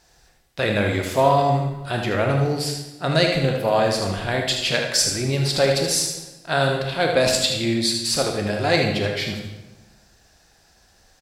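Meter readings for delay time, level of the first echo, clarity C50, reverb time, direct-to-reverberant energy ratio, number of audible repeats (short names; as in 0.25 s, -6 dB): 78 ms, -7.5 dB, 3.0 dB, 1.0 s, 1.5 dB, 1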